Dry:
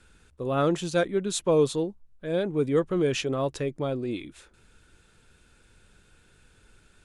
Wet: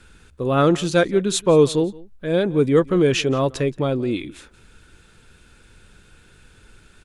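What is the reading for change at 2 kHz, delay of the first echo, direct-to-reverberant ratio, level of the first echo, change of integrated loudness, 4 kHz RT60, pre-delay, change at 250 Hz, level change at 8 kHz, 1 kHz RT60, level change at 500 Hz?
+8.0 dB, 173 ms, no reverb, -22.0 dB, +7.5 dB, no reverb, no reverb, +8.0 dB, +6.5 dB, no reverb, +7.0 dB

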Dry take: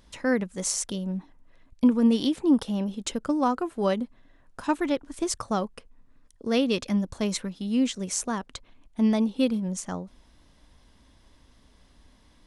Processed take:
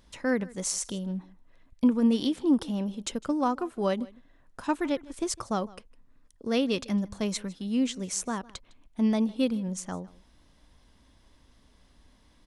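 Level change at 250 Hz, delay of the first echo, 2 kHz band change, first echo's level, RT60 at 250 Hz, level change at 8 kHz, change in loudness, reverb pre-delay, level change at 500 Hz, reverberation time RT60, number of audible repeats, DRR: -2.5 dB, 156 ms, -2.5 dB, -22.0 dB, no reverb, -2.5 dB, -2.5 dB, no reverb, -2.5 dB, no reverb, 1, no reverb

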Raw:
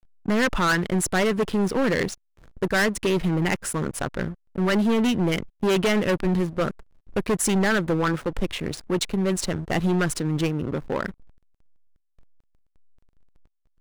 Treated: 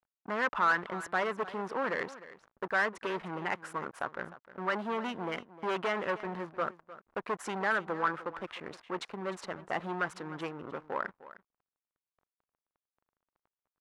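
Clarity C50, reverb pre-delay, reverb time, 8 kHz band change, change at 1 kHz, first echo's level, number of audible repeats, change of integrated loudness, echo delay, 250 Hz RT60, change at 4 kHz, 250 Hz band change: no reverb, no reverb, no reverb, -22.5 dB, -3.0 dB, -16.5 dB, 1, -10.5 dB, 305 ms, no reverb, -14.0 dB, -18.0 dB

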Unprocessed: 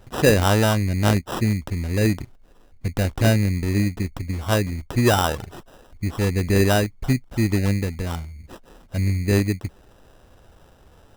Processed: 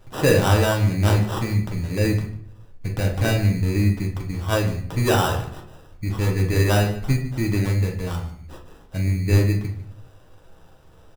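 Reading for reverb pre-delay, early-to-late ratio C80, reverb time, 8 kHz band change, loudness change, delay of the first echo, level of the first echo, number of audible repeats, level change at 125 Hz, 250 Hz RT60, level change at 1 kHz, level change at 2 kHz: 6 ms, 11.0 dB, 0.60 s, -2.0 dB, 0.0 dB, 148 ms, -17.5 dB, 1, +1.5 dB, 0.80 s, -0.5 dB, -0.5 dB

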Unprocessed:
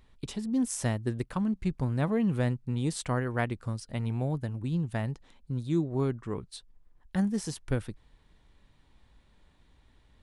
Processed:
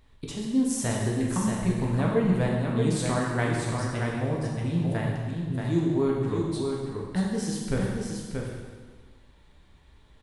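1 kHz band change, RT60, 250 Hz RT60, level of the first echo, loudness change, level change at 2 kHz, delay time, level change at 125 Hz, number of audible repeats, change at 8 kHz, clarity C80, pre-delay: +5.0 dB, 1.5 s, 1.6 s, -5.0 dB, +4.0 dB, +5.5 dB, 630 ms, +3.5 dB, 1, +5.0 dB, 0.5 dB, 6 ms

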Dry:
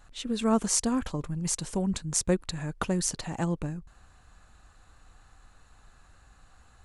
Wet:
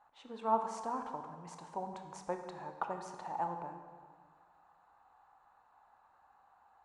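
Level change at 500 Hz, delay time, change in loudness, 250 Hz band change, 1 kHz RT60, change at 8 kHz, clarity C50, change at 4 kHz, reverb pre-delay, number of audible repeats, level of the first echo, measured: -8.5 dB, no echo, -11.0 dB, -18.5 dB, 1.7 s, -27.5 dB, 7.0 dB, -22.0 dB, 20 ms, no echo, no echo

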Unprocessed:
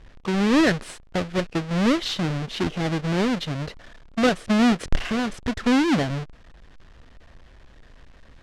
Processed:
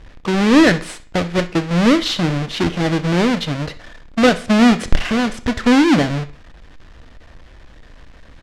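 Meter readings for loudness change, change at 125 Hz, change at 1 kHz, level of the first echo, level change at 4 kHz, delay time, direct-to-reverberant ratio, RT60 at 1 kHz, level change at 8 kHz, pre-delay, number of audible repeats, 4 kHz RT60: +7.0 dB, +6.5 dB, +7.0 dB, -19.5 dB, +7.0 dB, 64 ms, 9.0 dB, 0.45 s, +6.5 dB, 3 ms, 1, 0.40 s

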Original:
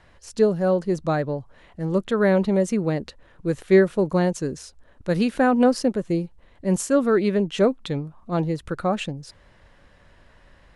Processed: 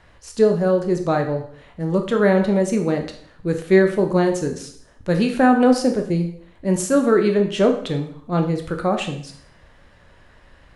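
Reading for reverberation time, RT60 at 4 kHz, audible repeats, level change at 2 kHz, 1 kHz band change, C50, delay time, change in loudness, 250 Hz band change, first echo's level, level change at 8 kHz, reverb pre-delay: 0.60 s, 0.60 s, no echo, +3.5 dB, +4.0 dB, 9.0 dB, no echo, +3.0 dB, +3.0 dB, no echo, +3.5 dB, 14 ms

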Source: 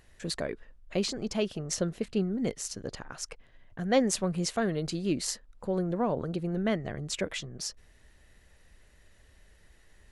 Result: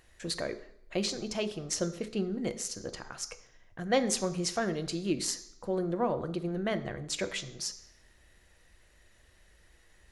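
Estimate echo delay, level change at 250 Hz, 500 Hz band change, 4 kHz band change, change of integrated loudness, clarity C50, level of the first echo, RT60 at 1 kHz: no echo, -3.0 dB, -1.5 dB, +0.5 dB, -1.5 dB, 14.0 dB, no echo, 0.70 s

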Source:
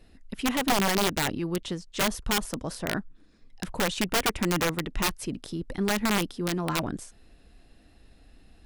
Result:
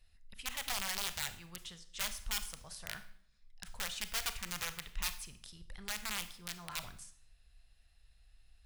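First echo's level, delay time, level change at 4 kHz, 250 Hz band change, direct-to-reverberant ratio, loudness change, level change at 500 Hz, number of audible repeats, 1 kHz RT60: no echo, no echo, -8.5 dB, -26.5 dB, 10.5 dB, -11.5 dB, -24.0 dB, no echo, 0.60 s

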